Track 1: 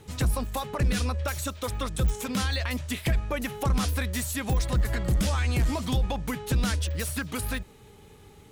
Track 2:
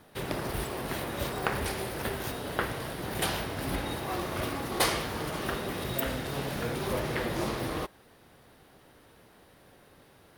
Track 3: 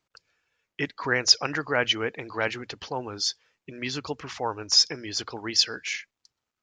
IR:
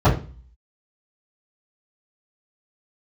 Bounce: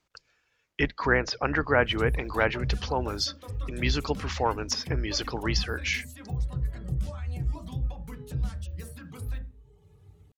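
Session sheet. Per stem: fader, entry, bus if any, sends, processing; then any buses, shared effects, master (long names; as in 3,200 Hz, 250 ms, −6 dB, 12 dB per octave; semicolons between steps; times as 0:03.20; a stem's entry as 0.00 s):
−15.0 dB, 1.80 s, send −21.5 dB, reverb reduction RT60 1 s; downward compressor 4 to 1, threshold −28 dBFS, peak gain reduction 7 dB
muted
+3.0 dB, 0.00 s, no send, sub-octave generator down 2 octaves, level −2 dB; treble cut that deepens with the level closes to 1,800 Hz, closed at −21 dBFS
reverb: on, RT60 0.35 s, pre-delay 3 ms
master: no processing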